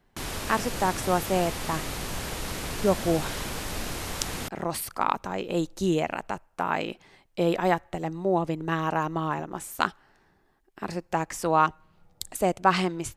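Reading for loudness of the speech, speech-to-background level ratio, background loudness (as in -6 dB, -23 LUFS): -28.0 LUFS, 5.5 dB, -33.5 LUFS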